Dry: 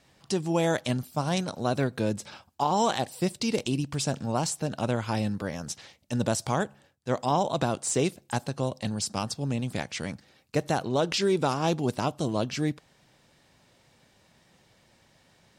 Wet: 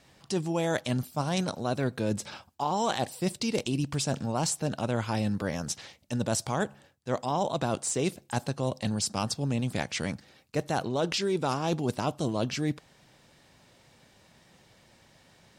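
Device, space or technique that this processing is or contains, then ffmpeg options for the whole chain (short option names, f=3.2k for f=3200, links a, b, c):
compression on the reversed sound: -af "areverse,acompressor=threshold=-27dB:ratio=6,areverse,volume=2.5dB"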